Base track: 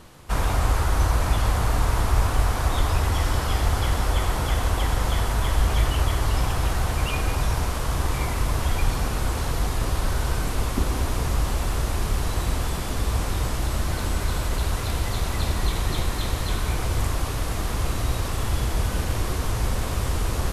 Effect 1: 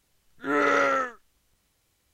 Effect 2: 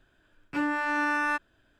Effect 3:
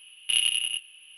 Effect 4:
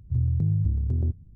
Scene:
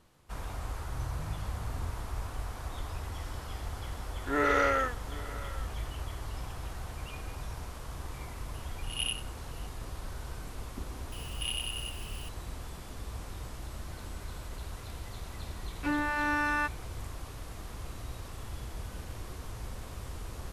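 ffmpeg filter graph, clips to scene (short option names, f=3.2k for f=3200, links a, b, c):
-filter_complex "[3:a]asplit=2[a][b];[0:a]volume=-16.5dB[c];[4:a]alimiter=level_in=2dB:limit=-24dB:level=0:latency=1:release=71,volume=-2dB[d];[1:a]aecho=1:1:785:0.119[e];[a]aeval=exprs='val(0)*pow(10,-26*(0.5-0.5*cos(2*PI*1.9*n/s))/20)':c=same[f];[b]aeval=exprs='val(0)+0.5*0.0299*sgn(val(0))':c=same[g];[d]atrim=end=1.35,asetpts=PTS-STARTPTS,volume=-9dB,afade=t=in:d=0.004:c=hsin,afade=t=out:st=1.346:d=0.004:c=hsin,adelay=790[h];[e]atrim=end=2.13,asetpts=PTS-STARTPTS,volume=-4dB,afade=t=in:d=0.004:c=hsin,afade=t=out:st=2.126:d=0.004:c=hsin,adelay=3830[i];[f]atrim=end=1.17,asetpts=PTS-STARTPTS,volume=-5.5dB,afade=t=in:d=0.004:c=hsin,afade=t=out:st=1.166:d=0.004:c=hsin,adelay=8540[j];[g]atrim=end=1.17,asetpts=PTS-STARTPTS,volume=-13dB,afade=t=in:d=0.004:c=hsin,afade=t=out:st=1.166:d=0.004:c=hsin,adelay=11120[k];[2:a]atrim=end=1.79,asetpts=PTS-STARTPTS,volume=-2.5dB,afade=t=in:d=0.004:c=hsin,afade=t=out:st=1.786:d=0.004:c=hsin,adelay=15300[l];[c][h][i][j][k][l]amix=inputs=6:normalize=0"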